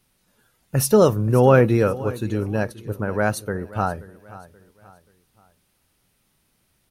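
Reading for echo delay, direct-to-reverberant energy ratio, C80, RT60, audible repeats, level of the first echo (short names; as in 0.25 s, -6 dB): 0.53 s, none, none, none, 3, -18.0 dB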